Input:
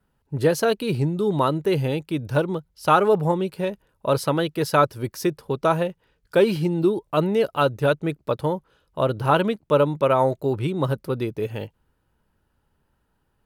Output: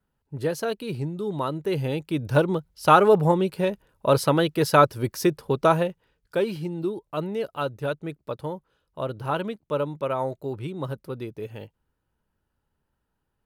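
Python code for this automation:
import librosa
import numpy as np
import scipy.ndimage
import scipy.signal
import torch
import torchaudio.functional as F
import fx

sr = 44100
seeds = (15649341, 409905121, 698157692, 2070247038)

y = fx.gain(x, sr, db=fx.line((1.45, -7.0), (2.38, 1.5), (5.65, 1.5), (6.51, -8.0)))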